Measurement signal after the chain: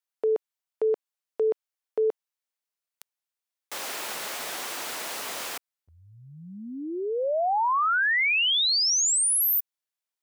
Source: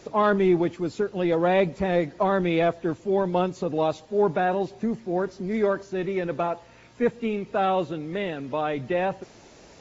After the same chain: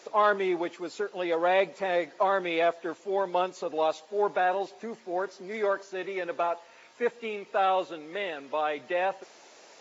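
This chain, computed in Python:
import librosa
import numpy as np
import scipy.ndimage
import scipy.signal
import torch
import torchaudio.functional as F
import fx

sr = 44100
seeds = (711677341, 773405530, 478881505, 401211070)

y = scipy.signal.sosfilt(scipy.signal.butter(2, 540.0, 'highpass', fs=sr, output='sos'), x)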